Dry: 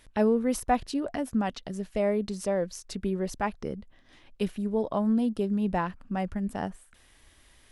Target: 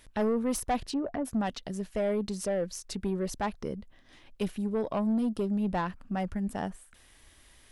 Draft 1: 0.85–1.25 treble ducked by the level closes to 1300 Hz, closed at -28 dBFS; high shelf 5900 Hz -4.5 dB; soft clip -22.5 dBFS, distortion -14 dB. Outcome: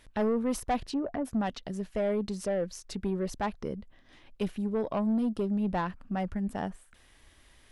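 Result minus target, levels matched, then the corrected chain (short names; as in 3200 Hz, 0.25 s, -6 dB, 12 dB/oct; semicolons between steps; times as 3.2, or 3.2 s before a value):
8000 Hz band -4.5 dB
0.85–1.25 treble ducked by the level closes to 1300 Hz, closed at -28 dBFS; high shelf 5900 Hz +3 dB; soft clip -22.5 dBFS, distortion -14 dB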